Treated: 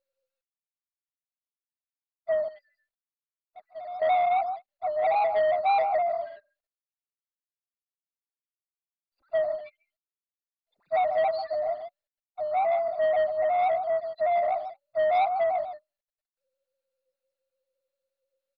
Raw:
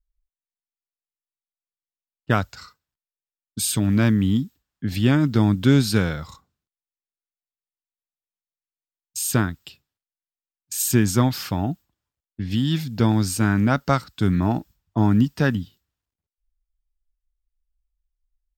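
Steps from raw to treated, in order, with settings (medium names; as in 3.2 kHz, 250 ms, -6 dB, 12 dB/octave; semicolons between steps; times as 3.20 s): split-band scrambler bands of 500 Hz; loudest bins only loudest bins 1; peaking EQ 11 kHz -10 dB 1.3 oct; delay 144 ms -10.5 dB; 2.48–4.02 s: compression 2:1, threshold -56 dBFS, peak gain reduction 17.5 dB; waveshaping leveller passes 2; trim -2 dB; MP2 32 kbps 44.1 kHz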